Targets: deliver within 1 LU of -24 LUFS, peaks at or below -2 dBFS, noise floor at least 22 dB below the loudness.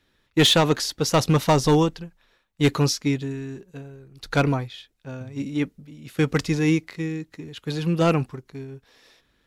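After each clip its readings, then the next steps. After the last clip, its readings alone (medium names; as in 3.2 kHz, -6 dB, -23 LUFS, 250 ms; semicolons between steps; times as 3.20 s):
clipped samples 0.4%; clipping level -11.5 dBFS; loudness -22.5 LUFS; peak level -11.5 dBFS; loudness target -24.0 LUFS
-> clip repair -11.5 dBFS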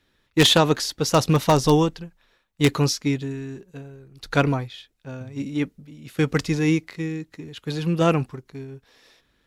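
clipped samples 0.0%; loudness -22.0 LUFS; peak level -2.5 dBFS; loudness target -24.0 LUFS
-> trim -2 dB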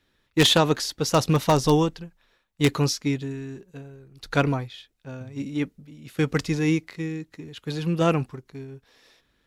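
loudness -24.0 LUFS; peak level -4.5 dBFS; noise floor -70 dBFS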